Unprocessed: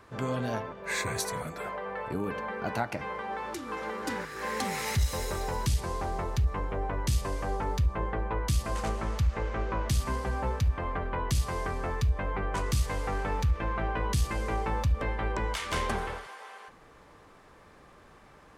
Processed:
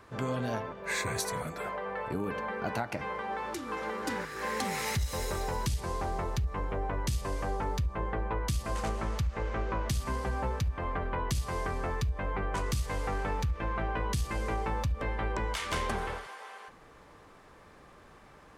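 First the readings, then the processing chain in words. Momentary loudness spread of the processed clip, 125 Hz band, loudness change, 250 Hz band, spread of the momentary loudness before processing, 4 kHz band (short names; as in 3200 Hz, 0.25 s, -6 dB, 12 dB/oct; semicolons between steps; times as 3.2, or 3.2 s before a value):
3 LU, -3.0 dB, -2.0 dB, -1.0 dB, 6 LU, -1.5 dB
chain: compressor, threshold -27 dBFS, peak gain reduction 6.5 dB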